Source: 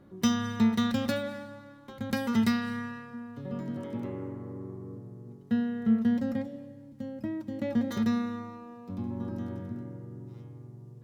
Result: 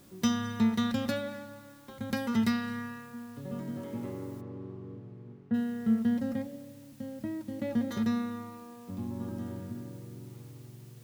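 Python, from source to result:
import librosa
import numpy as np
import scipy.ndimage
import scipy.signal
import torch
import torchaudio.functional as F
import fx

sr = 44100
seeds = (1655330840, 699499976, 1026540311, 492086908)

y = fx.quant_dither(x, sr, seeds[0], bits=10, dither='triangular')
y = fx.lowpass(y, sr, hz=fx.line((4.4, 2400.0), (5.53, 1400.0)), slope=12, at=(4.4, 5.53), fade=0.02)
y = F.gain(torch.from_numpy(y), -2.0).numpy()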